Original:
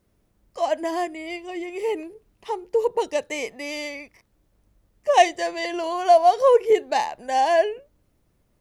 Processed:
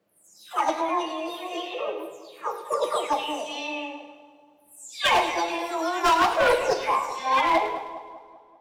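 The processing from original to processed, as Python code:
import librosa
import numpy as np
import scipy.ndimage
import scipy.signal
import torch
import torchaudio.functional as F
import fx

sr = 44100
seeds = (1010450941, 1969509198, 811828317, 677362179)

p1 = fx.spec_delay(x, sr, highs='early', ms=464)
p2 = scipy.signal.sosfilt(scipy.signal.butter(2, 220.0, 'highpass', fs=sr, output='sos'), p1)
p3 = fx.high_shelf(p2, sr, hz=5200.0, db=-10.5)
p4 = fx.formant_shift(p3, sr, semitones=4)
p5 = np.clip(10.0 ** (16.5 / 20.0) * p4, -1.0, 1.0) / 10.0 ** (16.5 / 20.0)
p6 = p5 + fx.echo_split(p5, sr, split_hz=1100.0, low_ms=196, high_ms=105, feedback_pct=52, wet_db=-12.0, dry=0)
y = fx.rev_double_slope(p6, sr, seeds[0], early_s=0.86, late_s=2.5, knee_db=-21, drr_db=6.5)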